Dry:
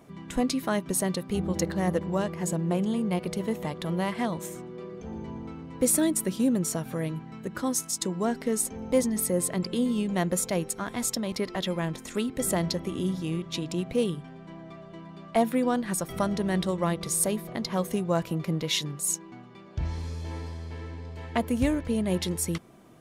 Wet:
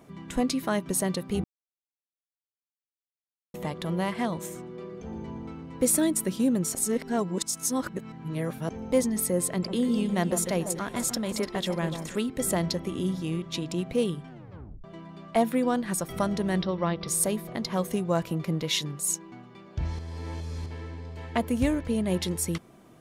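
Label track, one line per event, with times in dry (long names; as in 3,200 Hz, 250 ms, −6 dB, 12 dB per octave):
1.440000	3.540000	silence
6.750000	8.690000	reverse
9.480000	12.160000	delay that swaps between a low-pass and a high-pass 147 ms, split 1,300 Hz, feedback 62%, level −7.5 dB
14.300000	14.300000	tape stop 0.54 s
16.620000	17.080000	Chebyshev low-pass filter 5,700 Hz, order 8
19.990000	20.660000	reverse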